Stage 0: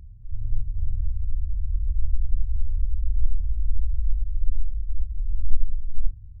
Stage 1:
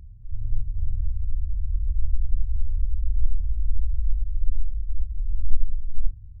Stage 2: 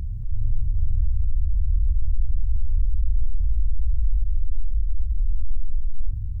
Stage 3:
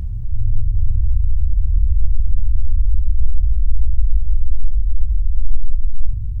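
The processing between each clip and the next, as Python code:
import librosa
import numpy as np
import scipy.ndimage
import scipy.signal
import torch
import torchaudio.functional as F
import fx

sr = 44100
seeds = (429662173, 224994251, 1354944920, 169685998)

y1 = x
y2 = 10.0 ** (-12.0 / 20.0) * np.tanh(y1 / 10.0 ** (-12.0 / 20.0))
y2 = fx.env_flatten(y2, sr, amount_pct=50)
y3 = fx.rev_plate(y2, sr, seeds[0], rt60_s=1.4, hf_ratio=0.95, predelay_ms=0, drr_db=6.0)
y3 = y3 * 10.0 ** (4.5 / 20.0)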